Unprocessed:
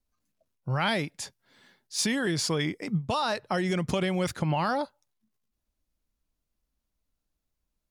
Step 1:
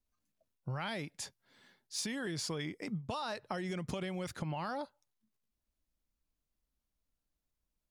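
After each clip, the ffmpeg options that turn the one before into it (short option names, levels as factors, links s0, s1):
-af "acompressor=threshold=0.0316:ratio=6,volume=0.562"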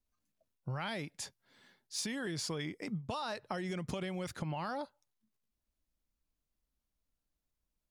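-af anull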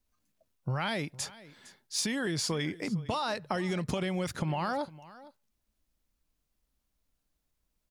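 -af "aecho=1:1:458:0.112,volume=2.11"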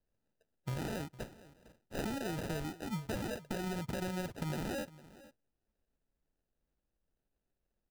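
-af "acrusher=samples=40:mix=1:aa=0.000001,volume=0.501"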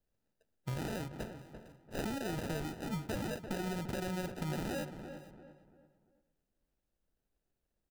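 -filter_complex "[0:a]asplit=2[s0][s1];[s1]adelay=342,lowpass=f=1900:p=1,volume=0.355,asplit=2[s2][s3];[s3]adelay=342,lowpass=f=1900:p=1,volume=0.37,asplit=2[s4][s5];[s5]adelay=342,lowpass=f=1900:p=1,volume=0.37,asplit=2[s6][s7];[s7]adelay=342,lowpass=f=1900:p=1,volume=0.37[s8];[s0][s2][s4][s6][s8]amix=inputs=5:normalize=0"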